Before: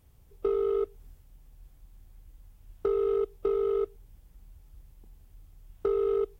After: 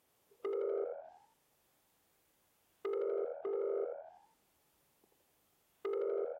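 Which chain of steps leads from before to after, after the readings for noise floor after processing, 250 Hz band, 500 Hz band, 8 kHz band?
-76 dBFS, -9.0 dB, -9.5 dB, n/a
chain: hard clip -28.5 dBFS, distortion -10 dB; HPF 390 Hz 12 dB/oct; treble ducked by the level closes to 630 Hz, closed at -34.5 dBFS; frequency-shifting echo 82 ms, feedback 49%, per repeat +81 Hz, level -5 dB; gain -3.5 dB

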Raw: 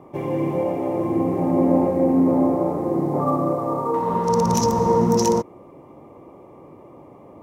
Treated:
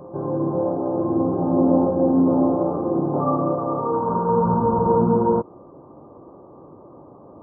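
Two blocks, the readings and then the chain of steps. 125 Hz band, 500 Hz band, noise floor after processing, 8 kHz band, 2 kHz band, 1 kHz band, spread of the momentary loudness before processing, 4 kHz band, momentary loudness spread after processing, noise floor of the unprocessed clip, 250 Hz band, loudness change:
0.0 dB, 0.0 dB, -46 dBFS, under -40 dB, n/a, 0.0 dB, 6 LU, under -40 dB, 6 LU, -46 dBFS, 0.0 dB, 0.0 dB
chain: brick-wall FIR low-pass 1600 Hz; reverse echo 0.537 s -18 dB

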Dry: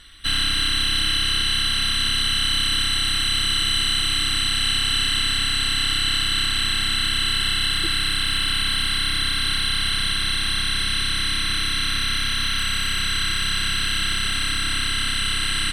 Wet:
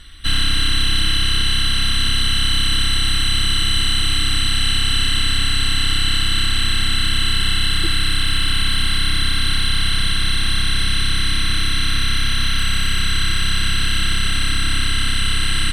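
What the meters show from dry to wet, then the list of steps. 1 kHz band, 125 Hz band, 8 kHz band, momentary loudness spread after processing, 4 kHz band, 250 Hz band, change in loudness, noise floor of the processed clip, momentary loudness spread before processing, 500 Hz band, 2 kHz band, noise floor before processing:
+1.5 dB, +8.5 dB, +1.5 dB, 2 LU, +1.5 dB, +5.5 dB, +2.0 dB, -17 dBFS, 3 LU, +3.5 dB, +1.5 dB, -23 dBFS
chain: in parallel at -11 dB: soft clip -22.5 dBFS, distortion -11 dB; on the sum: low shelf 230 Hz +8.5 dB

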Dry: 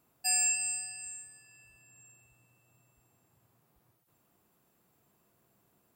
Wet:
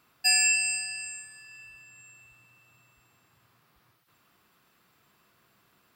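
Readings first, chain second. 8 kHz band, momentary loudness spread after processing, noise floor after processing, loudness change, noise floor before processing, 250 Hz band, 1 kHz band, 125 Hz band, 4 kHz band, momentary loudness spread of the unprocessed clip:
+2.5 dB, 18 LU, -67 dBFS, +5.5 dB, -73 dBFS, +2.0 dB, +3.0 dB, +2.0 dB, +11.5 dB, 17 LU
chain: band shelf 2400 Hz +10.5 dB 2.6 oct; gain +2 dB

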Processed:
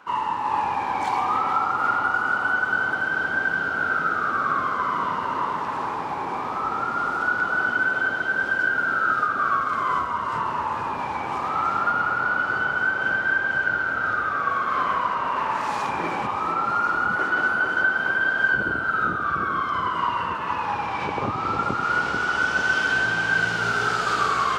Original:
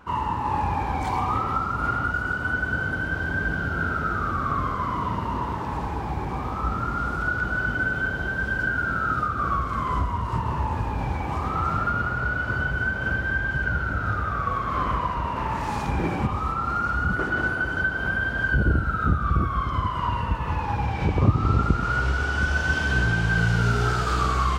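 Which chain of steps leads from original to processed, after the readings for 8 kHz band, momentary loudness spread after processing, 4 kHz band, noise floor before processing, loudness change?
n/a, 5 LU, +3.5 dB, -29 dBFS, +2.0 dB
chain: weighting filter A; tape echo 0.442 s, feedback 80%, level -3.5 dB, low-pass 1500 Hz; gain +2 dB

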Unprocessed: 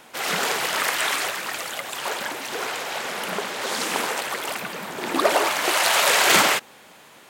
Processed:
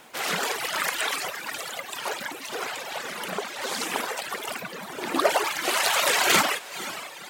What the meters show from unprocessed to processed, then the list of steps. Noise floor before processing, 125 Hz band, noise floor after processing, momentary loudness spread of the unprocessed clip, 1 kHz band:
-49 dBFS, -3.0 dB, -41 dBFS, 12 LU, -4.0 dB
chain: diffused feedback echo 0.495 s, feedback 44%, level -10 dB; reverb removal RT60 1.6 s; added noise blue -67 dBFS; gain -1.5 dB

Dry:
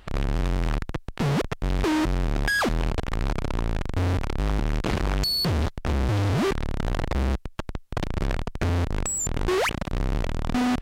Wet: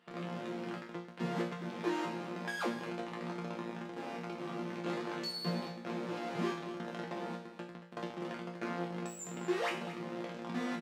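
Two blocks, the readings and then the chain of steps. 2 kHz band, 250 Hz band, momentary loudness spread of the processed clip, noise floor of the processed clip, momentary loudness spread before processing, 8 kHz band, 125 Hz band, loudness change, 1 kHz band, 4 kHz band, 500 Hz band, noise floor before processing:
-12.5 dB, -10.0 dB, 6 LU, -49 dBFS, 6 LU, -18.5 dB, -19.0 dB, -13.0 dB, -9.5 dB, -14.0 dB, -9.0 dB, -45 dBFS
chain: elliptic high-pass 160 Hz, stop band 40 dB; high shelf 7600 Hz -11 dB; resonator bank A#2 fifth, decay 0.49 s; echo 0.229 s -13 dB; gain +6 dB

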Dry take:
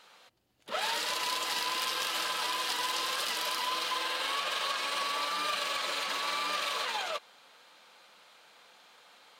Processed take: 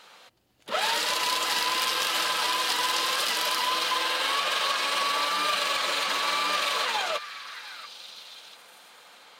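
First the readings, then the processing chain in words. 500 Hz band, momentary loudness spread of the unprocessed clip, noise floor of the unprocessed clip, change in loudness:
+6.0 dB, 1 LU, -59 dBFS, +6.0 dB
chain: delay with a stepping band-pass 0.688 s, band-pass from 1700 Hz, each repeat 1.4 oct, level -9.5 dB; gain +6 dB

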